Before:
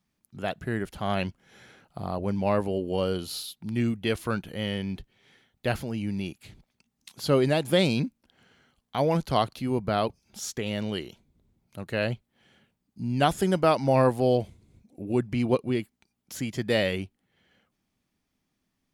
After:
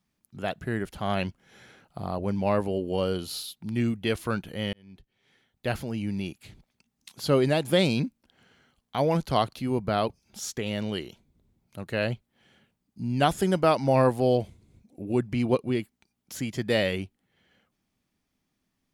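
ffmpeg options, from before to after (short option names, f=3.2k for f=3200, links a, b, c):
-filter_complex "[0:a]asplit=2[a][b];[a]atrim=end=4.73,asetpts=PTS-STARTPTS,afade=t=out:st=4.726:d=0.004:c=hsin[c];[b]atrim=start=4.73,asetpts=PTS-STARTPTS,afade=t=in:d=1.16[d];[c][d]concat=n=2:v=0:a=1"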